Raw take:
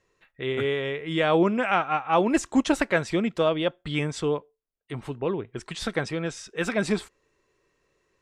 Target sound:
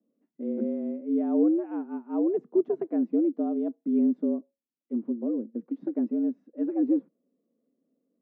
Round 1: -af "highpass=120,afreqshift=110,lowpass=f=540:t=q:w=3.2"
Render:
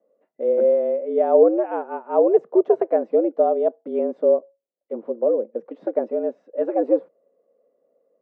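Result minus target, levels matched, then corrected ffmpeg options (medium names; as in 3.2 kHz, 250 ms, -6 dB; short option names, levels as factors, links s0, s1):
250 Hz band -10.5 dB
-af "highpass=120,afreqshift=110,lowpass=f=260:t=q:w=3.2"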